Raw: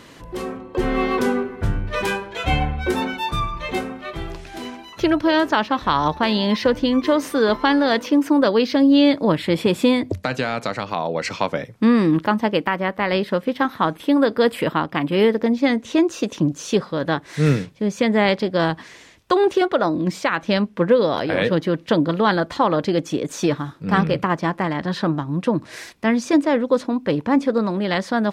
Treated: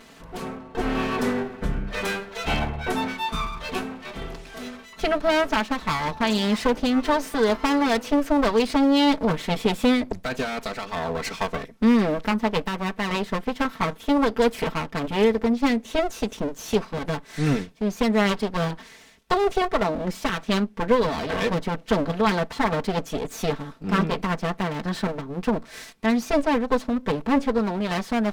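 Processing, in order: comb filter that takes the minimum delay 4.5 ms; trim -2.5 dB

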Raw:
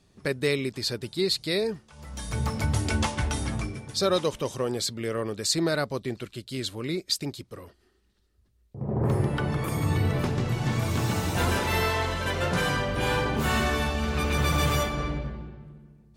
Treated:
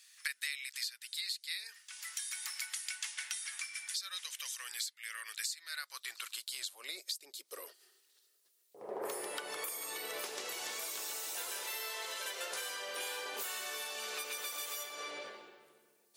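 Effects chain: differentiator; compression 10:1, threshold -50 dBFS, peak gain reduction 26 dB; high-pass sweep 1.8 kHz -> 440 Hz, 5.68–7.28 s; trim +11.5 dB

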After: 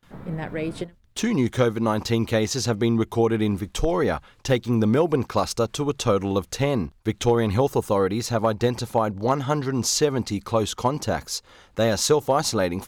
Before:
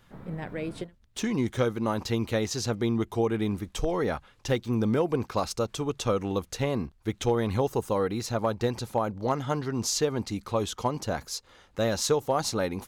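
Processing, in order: gate with hold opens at -50 dBFS; trim +5.5 dB

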